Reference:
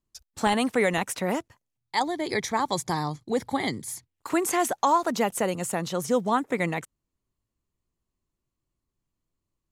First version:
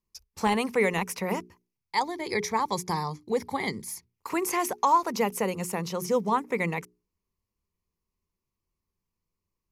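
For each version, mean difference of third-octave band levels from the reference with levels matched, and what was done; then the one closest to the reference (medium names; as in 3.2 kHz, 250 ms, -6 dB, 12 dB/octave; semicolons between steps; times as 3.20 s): 2.5 dB: hum notches 60/120/180/240/300/360/420 Hz; de-esser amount 35%; rippled EQ curve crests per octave 0.83, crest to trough 8 dB; trim -2.5 dB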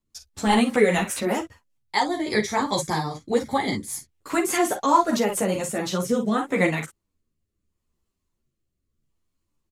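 4.0 dB: early reflections 38 ms -10 dB, 51 ms -10 dB; rotary cabinet horn 5 Hz, later 0.75 Hz, at 5.31 s; three-phase chorus; trim +8 dB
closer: first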